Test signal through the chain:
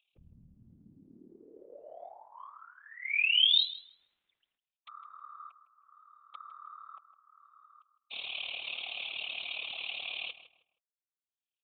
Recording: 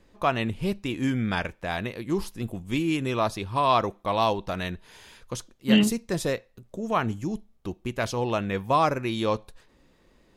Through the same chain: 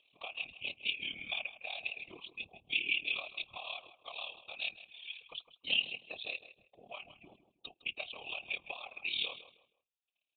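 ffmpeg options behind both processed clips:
ffmpeg -i in.wav -filter_complex "[0:a]agate=range=-35dB:threshold=-54dB:ratio=16:detection=peak,afftdn=noise_reduction=17:noise_floor=-45,asplit=3[link_01][link_02][link_03];[link_01]bandpass=frequency=730:width_type=q:width=8,volume=0dB[link_04];[link_02]bandpass=frequency=1090:width_type=q:width=8,volume=-6dB[link_05];[link_03]bandpass=frequency=2440:width_type=q:width=8,volume=-9dB[link_06];[link_04][link_05][link_06]amix=inputs=3:normalize=0,equalizer=frequency=110:width=2.6:gain=8.5,acompressor=mode=upward:threshold=-44dB:ratio=2.5,crystalizer=i=3:c=0,acompressor=threshold=-37dB:ratio=16,tremolo=f=37:d=0.857,aexciter=amount=14:drive=9.2:freq=2500,afftfilt=real='hypot(re,im)*cos(2*PI*random(0))':imag='hypot(re,im)*sin(2*PI*random(1))':win_size=512:overlap=0.75,asplit=2[link_07][link_08];[link_08]adelay=158,lowpass=frequency=2100:poles=1,volume=-12dB,asplit=2[link_09][link_10];[link_10]adelay=158,lowpass=frequency=2100:poles=1,volume=0.3,asplit=2[link_11][link_12];[link_12]adelay=158,lowpass=frequency=2100:poles=1,volume=0.3[link_13];[link_09][link_11][link_13]amix=inputs=3:normalize=0[link_14];[link_07][link_14]amix=inputs=2:normalize=0,aresample=8000,aresample=44100" out.wav

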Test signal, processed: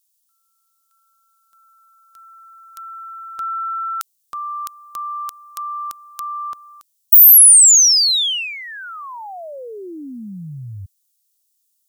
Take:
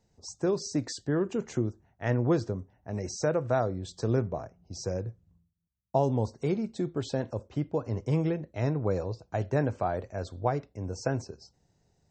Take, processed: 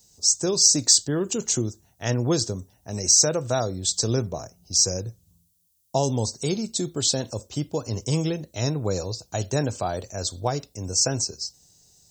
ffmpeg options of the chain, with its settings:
ffmpeg -i in.wav -af "aexciter=amount=2.9:drive=7.9:freq=2900,bass=frequency=250:gain=1,treble=frequency=4000:gain=10,volume=2dB" out.wav

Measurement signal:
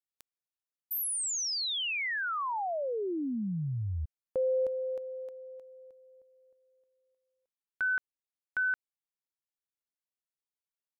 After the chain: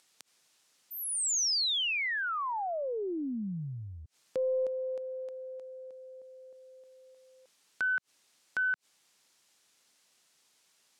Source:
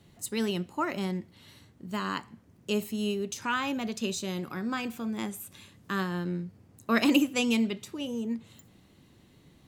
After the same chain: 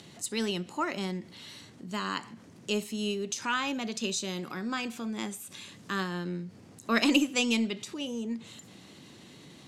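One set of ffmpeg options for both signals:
ffmpeg -i in.wav -filter_complex "[0:a]highshelf=frequency=3500:gain=9,asplit=2[link_01][link_02];[link_02]acompressor=mode=upward:threshold=-30dB:ratio=2.5:attack=2.3:release=63:knee=2.83:detection=peak,volume=1dB[link_03];[link_01][link_03]amix=inputs=2:normalize=0,highpass=150,lowpass=7300,aeval=exprs='0.944*(cos(1*acos(clip(val(0)/0.944,-1,1)))-cos(1*PI/2))+0.00596*(cos(8*acos(clip(val(0)/0.944,-1,1)))-cos(8*PI/2))':channel_layout=same,volume=-8dB" out.wav

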